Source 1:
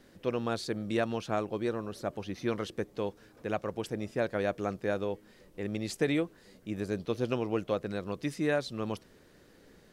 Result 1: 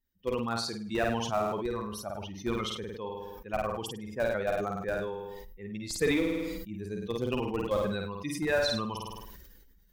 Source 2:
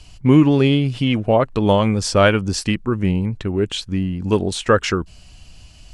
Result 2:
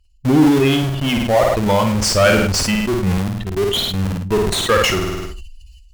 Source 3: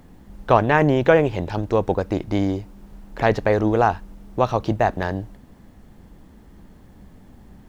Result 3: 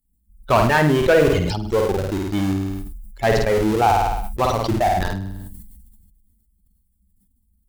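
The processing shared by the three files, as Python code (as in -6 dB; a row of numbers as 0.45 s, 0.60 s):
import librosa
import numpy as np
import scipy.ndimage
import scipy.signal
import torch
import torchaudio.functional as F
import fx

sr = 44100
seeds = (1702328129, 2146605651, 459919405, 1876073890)

p1 = fx.bin_expand(x, sr, power=2.0)
p2 = fx.low_shelf(p1, sr, hz=380.0, db=-6.5)
p3 = fx.schmitt(p2, sr, flips_db=-30.5)
p4 = p2 + (p3 * librosa.db_to_amplitude(-3.0))
p5 = fx.cheby_harmonics(p4, sr, harmonics=(5,), levels_db=(-17,), full_scale_db=-4.5)
p6 = p5 + fx.room_flutter(p5, sr, wall_m=8.9, rt60_s=0.44, dry=0)
y = fx.sustainer(p6, sr, db_per_s=30.0)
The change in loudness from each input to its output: +1.5 LU, +1.5 LU, +1.0 LU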